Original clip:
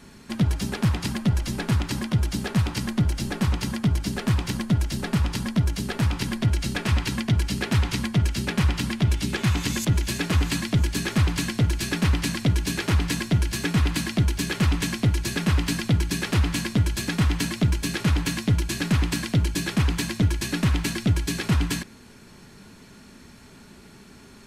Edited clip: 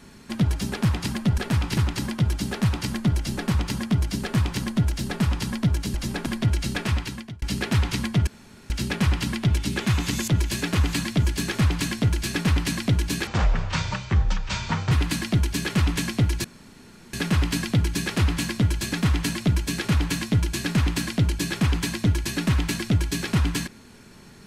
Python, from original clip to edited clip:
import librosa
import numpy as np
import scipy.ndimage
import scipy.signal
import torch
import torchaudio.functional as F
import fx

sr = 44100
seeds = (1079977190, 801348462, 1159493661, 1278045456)

y = fx.edit(x, sr, fx.swap(start_s=1.38, length_s=0.32, other_s=5.87, other_length_s=0.39),
    fx.fade_out_span(start_s=6.81, length_s=0.61),
    fx.insert_room_tone(at_s=8.27, length_s=0.43),
    fx.speed_span(start_s=12.84, length_s=0.92, speed=0.56),
    fx.insert_room_tone(at_s=15.29, length_s=0.69), tone=tone)